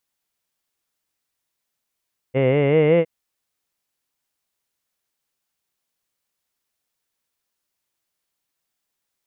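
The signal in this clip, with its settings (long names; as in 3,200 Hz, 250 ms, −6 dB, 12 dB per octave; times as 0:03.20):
vowel from formants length 0.71 s, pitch 127 Hz, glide +5 semitones, F1 490 Hz, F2 2,100 Hz, F3 2,800 Hz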